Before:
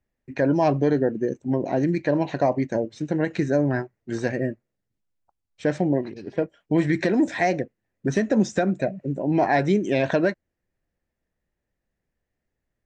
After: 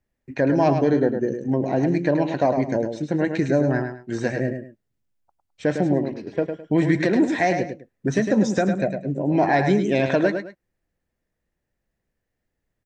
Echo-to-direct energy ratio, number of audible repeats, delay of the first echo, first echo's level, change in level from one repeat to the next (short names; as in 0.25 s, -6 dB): -6.5 dB, 2, 0.105 s, -7.0 dB, -11.5 dB